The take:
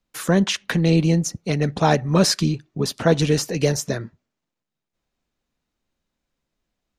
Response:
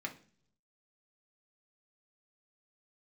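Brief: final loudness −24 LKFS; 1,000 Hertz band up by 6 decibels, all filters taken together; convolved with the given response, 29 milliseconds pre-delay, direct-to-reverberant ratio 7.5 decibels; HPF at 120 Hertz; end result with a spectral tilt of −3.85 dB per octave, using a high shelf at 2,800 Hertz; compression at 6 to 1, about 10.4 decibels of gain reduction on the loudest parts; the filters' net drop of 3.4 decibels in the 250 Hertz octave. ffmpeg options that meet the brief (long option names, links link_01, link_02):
-filter_complex "[0:a]highpass=120,equalizer=frequency=250:width_type=o:gain=-5.5,equalizer=frequency=1000:width_type=o:gain=8,highshelf=frequency=2800:gain=4.5,acompressor=threshold=-20dB:ratio=6,asplit=2[link_01][link_02];[1:a]atrim=start_sample=2205,adelay=29[link_03];[link_02][link_03]afir=irnorm=-1:irlink=0,volume=-8.5dB[link_04];[link_01][link_04]amix=inputs=2:normalize=0,volume=1dB"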